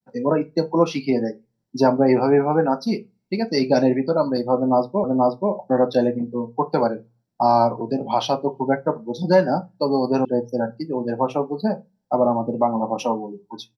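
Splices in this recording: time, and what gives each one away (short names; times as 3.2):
5.04 repeat of the last 0.48 s
10.25 sound cut off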